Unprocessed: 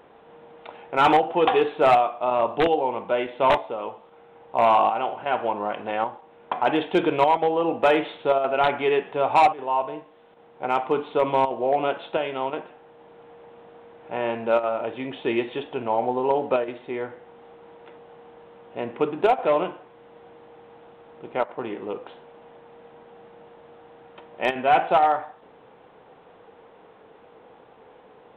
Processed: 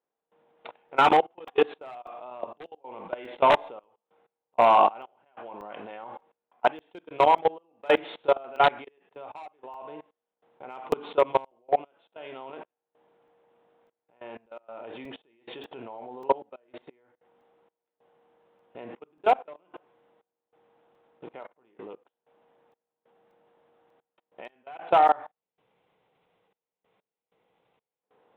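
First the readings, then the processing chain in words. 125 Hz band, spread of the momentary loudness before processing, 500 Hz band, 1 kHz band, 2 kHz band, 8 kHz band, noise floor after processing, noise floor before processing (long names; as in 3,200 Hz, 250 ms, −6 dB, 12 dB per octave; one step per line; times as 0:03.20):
−9.5 dB, 14 LU, −5.5 dB, −3.5 dB, −5.0 dB, can't be measured, below −85 dBFS, −52 dBFS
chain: low-shelf EQ 110 Hz −10 dB
tuned comb filter 540 Hz, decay 0.63 s, mix 40%
output level in coarse steps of 24 dB
gain on a spectral selection 0:25.28–0:28.03, 200–1,900 Hz −7 dB
gate pattern "..xxxxxx..x..xxx" 95 BPM −24 dB
regular buffer underruns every 0.59 s, samples 128, zero, from 0:00.89
level +7 dB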